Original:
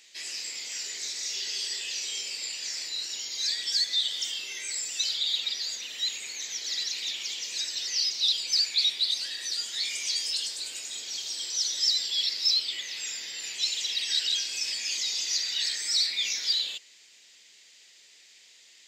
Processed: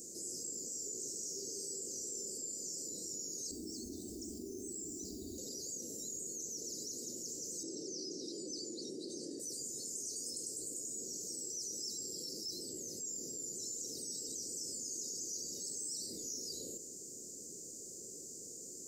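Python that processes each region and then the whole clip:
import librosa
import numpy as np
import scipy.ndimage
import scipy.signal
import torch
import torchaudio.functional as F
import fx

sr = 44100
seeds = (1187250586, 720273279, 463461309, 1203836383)

y = fx.chain(x, sr, fx.riaa(side='playback'),
    fx.quant_dither(seeds[0], bits=10, dither='none'),
    fx.fixed_phaser(hz=520.0, stages=6), at=(3.51, 5.38))
y = fx.chain(y, sr, fx.bandpass_edges(low_hz=140.0, high_hz=5200.0),
    fx.peak_eq(hz=330.0, db=9.5, octaves=0.88), at=(7.63, 9.4))
y = scipy.signal.sosfilt(scipy.signal.cheby2(4, 50, [920.0, 3600.0], 'bandstop', fs=sr, output='sos'), y)
y = fx.high_shelf(y, sr, hz=2700.0, db=-11.0)
y = fx.env_flatten(y, sr, amount_pct=70)
y = y * librosa.db_to_amplitude(4.5)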